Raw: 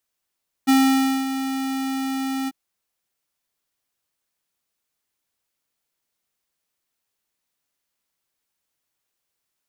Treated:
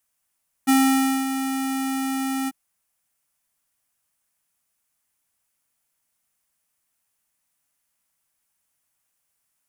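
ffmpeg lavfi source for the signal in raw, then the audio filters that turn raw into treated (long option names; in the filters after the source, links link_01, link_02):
-f lavfi -i "aevalsrc='0.188*(2*lt(mod(267*t,1),0.5)-1)':duration=1.843:sample_rate=44100,afade=type=in:duration=0.021,afade=type=out:start_time=0.021:duration=0.557:silence=0.282,afade=type=out:start_time=1.81:duration=0.033"
-filter_complex "[0:a]equalizer=frequency=400:width_type=o:width=0.67:gain=-9,equalizer=frequency=4000:width_type=o:width=0.67:gain=-6,equalizer=frequency=10000:width_type=o:width=0.67:gain=6,asplit=2[link_01][link_02];[link_02]asoftclip=type=tanh:threshold=-30.5dB,volume=-7dB[link_03];[link_01][link_03]amix=inputs=2:normalize=0"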